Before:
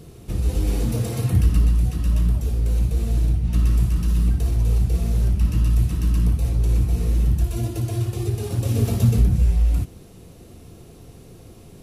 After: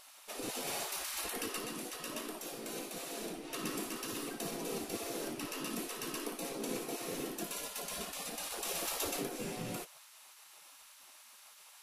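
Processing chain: 0.86–3.24 s: bass shelf 370 Hz -4 dB; spectral gate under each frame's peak -25 dB weak

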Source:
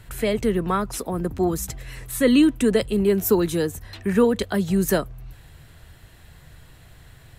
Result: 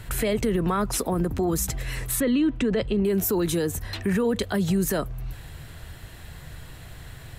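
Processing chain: in parallel at -3 dB: compression, threshold -27 dBFS, peak gain reduction 14 dB; 2.20–3.05 s: on the sum: distance through air 150 m; peak limiter -17.5 dBFS, peak gain reduction 11.5 dB; trim +1.5 dB

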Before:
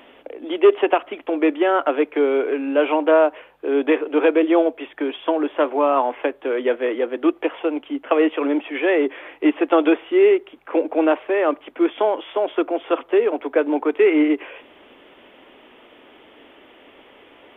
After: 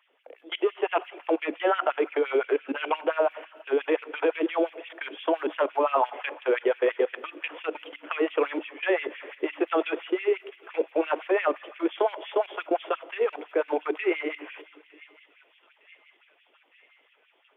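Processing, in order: level held to a coarse grid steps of 23 dB; bass shelf 480 Hz -6 dB; hum notches 60/120/180/240/300 Hz; feedback echo behind a high-pass 908 ms, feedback 72%, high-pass 2.7 kHz, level -16.5 dB; on a send at -16.5 dB: reverberation RT60 2.2 s, pre-delay 7 ms; on the sum: LFO high-pass sine 5.8 Hz 330–2600 Hz

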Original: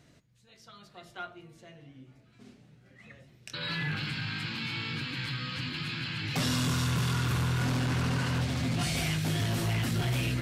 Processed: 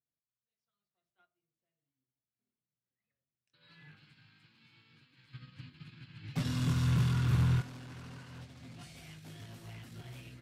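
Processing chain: 5.34–7.61 s: tone controls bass +9 dB, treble -3 dB; upward expansion 2.5:1, over -43 dBFS; trim -4.5 dB

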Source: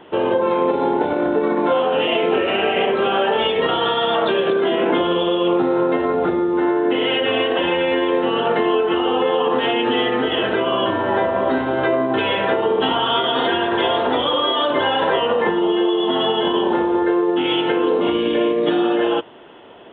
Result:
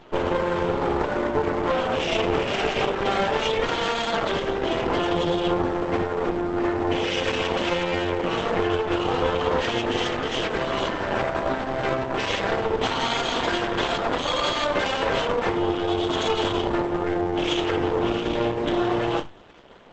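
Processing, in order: flutter echo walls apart 5 m, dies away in 0.21 s; half-wave rectifier; Opus 12 kbps 48 kHz

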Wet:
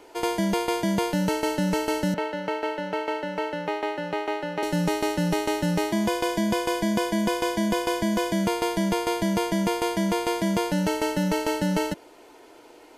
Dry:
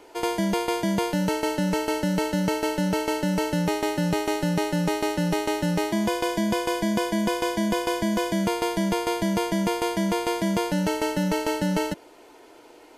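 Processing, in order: 2.14–4.63 s: three-band isolator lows -17 dB, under 350 Hz, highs -21 dB, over 3.4 kHz

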